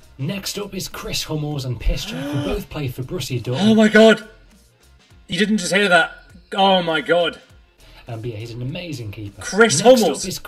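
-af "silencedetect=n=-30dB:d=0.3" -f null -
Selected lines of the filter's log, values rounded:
silence_start: 4.23
silence_end: 5.30 | silence_duration: 1.07
silence_start: 6.13
silence_end: 6.52 | silence_duration: 0.39
silence_start: 7.36
silence_end: 8.08 | silence_duration: 0.72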